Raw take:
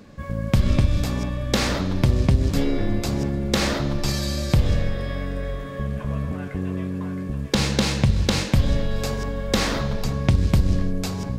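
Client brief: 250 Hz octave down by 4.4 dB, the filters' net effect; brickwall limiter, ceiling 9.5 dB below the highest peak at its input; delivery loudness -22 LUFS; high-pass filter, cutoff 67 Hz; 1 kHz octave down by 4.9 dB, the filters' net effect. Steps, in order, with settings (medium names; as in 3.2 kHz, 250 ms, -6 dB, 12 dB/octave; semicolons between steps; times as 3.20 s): high-pass 67 Hz; peaking EQ 250 Hz -6 dB; peaking EQ 1 kHz -6 dB; trim +6 dB; peak limiter -10.5 dBFS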